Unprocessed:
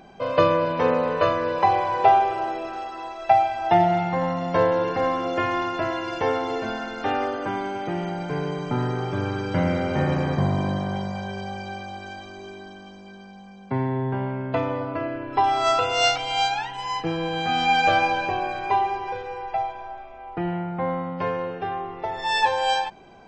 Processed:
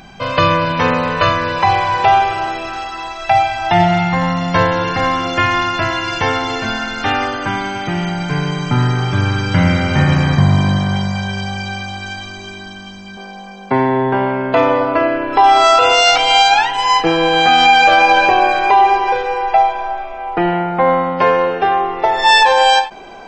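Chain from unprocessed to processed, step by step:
parametric band 470 Hz −14.5 dB 2.1 octaves, from 0:13.17 110 Hz
boost into a limiter +17 dB
every ending faded ahead of time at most 200 dB per second
level −1 dB

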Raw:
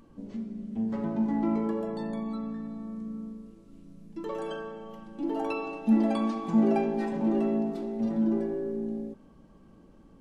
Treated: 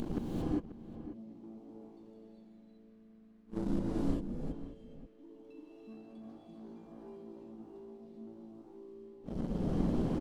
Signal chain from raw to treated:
Chebyshev band-stop filter 460–3,500 Hz, order 2
high-shelf EQ 4,000 Hz −10 dB
in parallel at +1.5 dB: downward compressor 6 to 1, threshold −52 dBFS, peak gain reduction 30 dB
on the sum: leveller curve on the samples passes 2
upward compression, threshold −51 dBFS
gate with flip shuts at −29 dBFS, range −39 dB
slap from a distant wall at 92 metres, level −13 dB
reverb whose tail is shaped and stops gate 430 ms rising, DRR −4.5 dB
level +7.5 dB

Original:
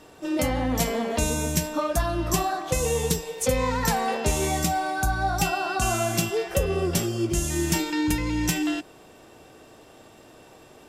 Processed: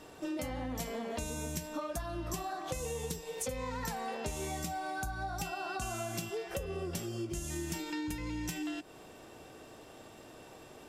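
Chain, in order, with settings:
downward compressor 6 to 1, threshold −33 dBFS, peak gain reduction 14.5 dB
level −2.5 dB

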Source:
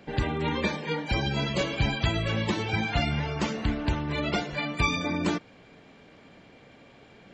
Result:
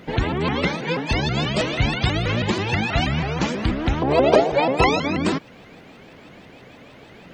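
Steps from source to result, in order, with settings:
0:04.02–0:05.00: flat-topped bell 560 Hz +13.5 dB
in parallel at −2 dB: downward compressor, threshold −31 dBFS, peak gain reduction 16 dB
on the sum: bit reduction 12 bits
pitch modulation by a square or saw wave saw up 6.2 Hz, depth 250 cents
level +3 dB

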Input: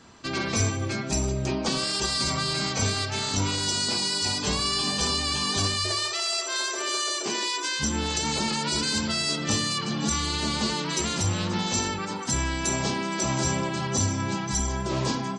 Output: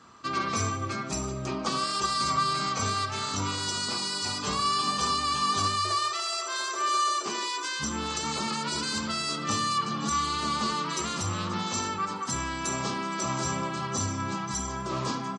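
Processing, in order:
high-pass filter 82 Hz
parametric band 1,200 Hz +14 dB 0.33 octaves
repeating echo 72 ms, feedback 43%, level −19 dB
level −5 dB

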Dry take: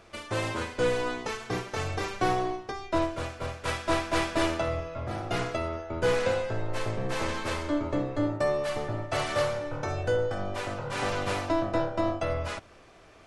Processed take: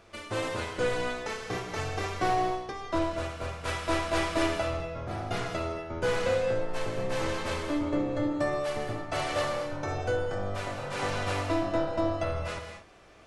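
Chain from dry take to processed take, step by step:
reverb whose tail is shaped and stops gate 260 ms flat, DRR 3.5 dB
level −2.5 dB

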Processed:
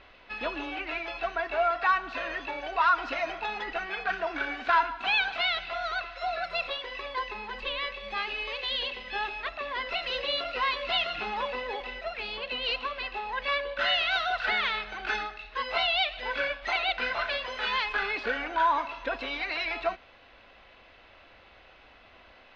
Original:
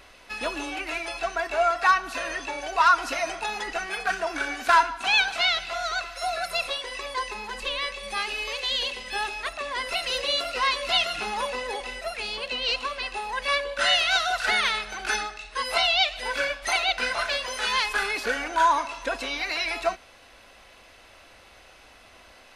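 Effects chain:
low-pass filter 3,800 Hz 24 dB per octave
in parallel at −2.5 dB: brickwall limiter −16.5 dBFS, peak gain reduction 8 dB
on the sum: level −7.5 dB

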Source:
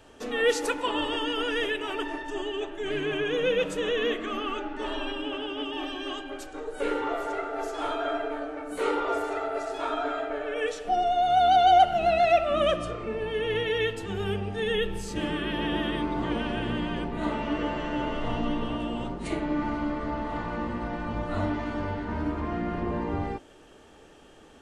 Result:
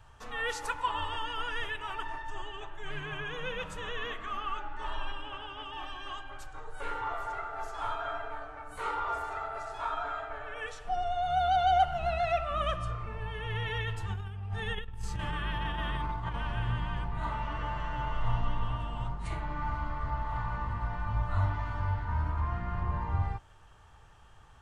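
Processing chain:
drawn EQ curve 120 Hz 0 dB, 270 Hz −26 dB, 570 Hz −19 dB, 980 Hz −4 dB, 2,500 Hz −13 dB
0:13.62–0:16.34: compressor whose output falls as the input rises −38 dBFS, ratio −0.5
level +5 dB

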